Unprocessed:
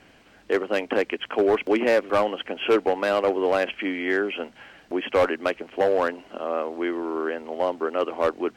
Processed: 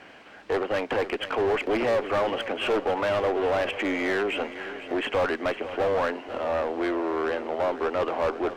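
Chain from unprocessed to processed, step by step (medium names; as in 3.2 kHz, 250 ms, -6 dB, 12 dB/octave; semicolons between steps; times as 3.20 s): one-sided clip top -27.5 dBFS; overdrive pedal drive 18 dB, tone 1.7 kHz, clips at -14.5 dBFS; shuffle delay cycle 829 ms, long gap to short 1.5:1, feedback 32%, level -13.5 dB; trim -2 dB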